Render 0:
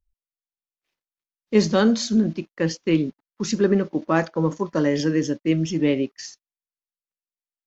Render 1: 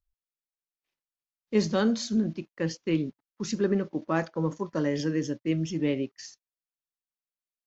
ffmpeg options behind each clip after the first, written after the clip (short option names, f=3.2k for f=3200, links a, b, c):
-af "equalizer=f=120:w=2.4:g=4,volume=-7dB"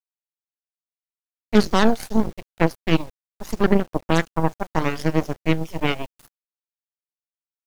-af "aeval=exprs='0.266*(cos(1*acos(clip(val(0)/0.266,-1,1)))-cos(1*PI/2))+0.0422*(cos(6*acos(clip(val(0)/0.266,-1,1)))-cos(6*PI/2))+0.0376*(cos(7*acos(clip(val(0)/0.266,-1,1)))-cos(7*PI/2))':c=same,aphaser=in_gain=1:out_gain=1:delay=1.4:decay=0.35:speed=0.76:type=triangular,acrusher=bits=8:mix=0:aa=0.000001,volume=6.5dB"